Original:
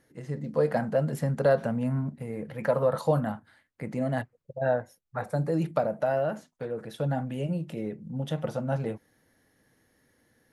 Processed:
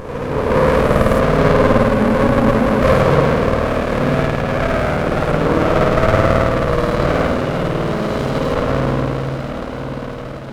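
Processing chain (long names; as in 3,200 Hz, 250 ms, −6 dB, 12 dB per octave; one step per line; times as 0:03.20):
peak hold with a rise ahead of every peak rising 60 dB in 2.64 s
low-shelf EQ 380 Hz −8 dB
feedback delay with all-pass diffusion 959 ms, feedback 64%, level −8.5 dB
spring reverb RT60 3.1 s, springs 52 ms, chirp 45 ms, DRR −9 dB
frozen spectrum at 0:01.93, 0.88 s
windowed peak hold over 33 samples
level +4.5 dB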